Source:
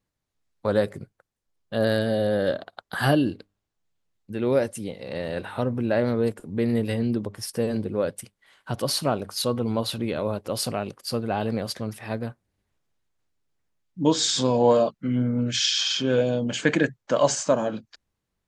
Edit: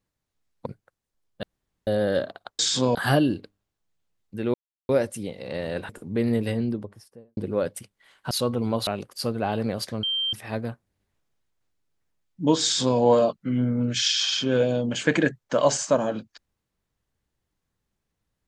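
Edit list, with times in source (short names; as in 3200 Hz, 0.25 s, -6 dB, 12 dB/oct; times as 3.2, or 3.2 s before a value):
0.66–0.98 cut
1.75–2.19 room tone
4.5 insert silence 0.35 s
5.5–6.31 cut
6.82–7.79 studio fade out
8.73–9.35 cut
9.91–10.75 cut
11.91 add tone 3150 Hz -23 dBFS 0.30 s
14.21–14.57 copy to 2.91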